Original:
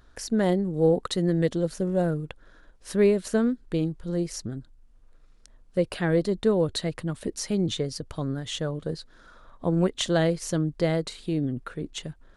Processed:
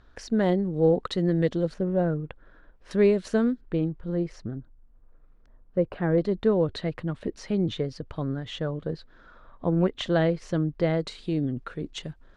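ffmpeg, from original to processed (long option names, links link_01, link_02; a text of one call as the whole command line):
ffmpeg -i in.wav -af "asetnsamples=nb_out_samples=441:pad=0,asendcmd='1.74 lowpass f 2300;2.91 lowpass f 5100;3.61 lowpass f 2300;4.51 lowpass f 1400;6.18 lowpass f 2900;11 lowpass f 5500',lowpass=4100" out.wav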